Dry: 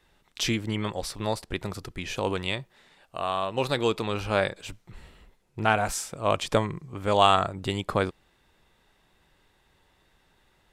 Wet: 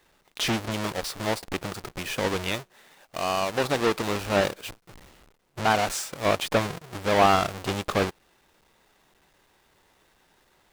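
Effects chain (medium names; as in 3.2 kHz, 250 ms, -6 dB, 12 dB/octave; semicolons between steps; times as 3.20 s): square wave that keeps the level; bass shelf 200 Hz -12 dB; slew-rate limiter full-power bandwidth 340 Hz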